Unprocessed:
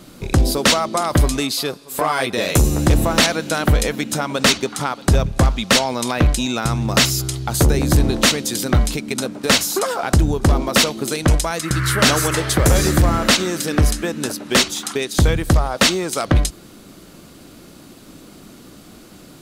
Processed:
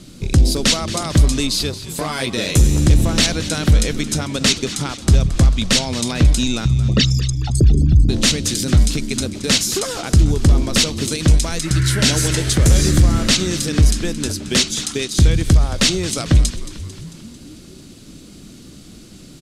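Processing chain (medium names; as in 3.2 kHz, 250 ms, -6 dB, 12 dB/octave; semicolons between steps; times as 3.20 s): 6.65–8.09 s: resonances exaggerated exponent 3; low-pass 8.2 kHz 12 dB/octave; peaking EQ 930 Hz -14.5 dB 2.7 oct; in parallel at +0.5 dB: peak limiter -14 dBFS, peak gain reduction 7 dB; 11.79–12.47 s: on the sum: Butterworth band-stop 1.2 kHz, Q 5.8; on a send: frequency-shifting echo 223 ms, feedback 60%, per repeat -72 Hz, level -14.5 dB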